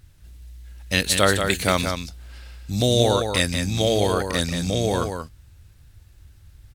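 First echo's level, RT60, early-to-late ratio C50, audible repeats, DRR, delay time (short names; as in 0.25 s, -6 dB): -6.5 dB, none, none, 1, none, 0.182 s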